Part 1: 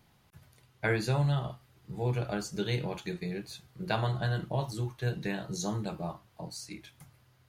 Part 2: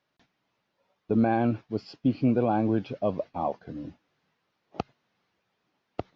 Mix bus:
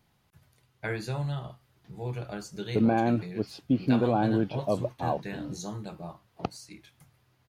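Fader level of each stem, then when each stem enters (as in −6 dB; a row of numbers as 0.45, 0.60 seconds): −4.0, −0.5 decibels; 0.00, 1.65 seconds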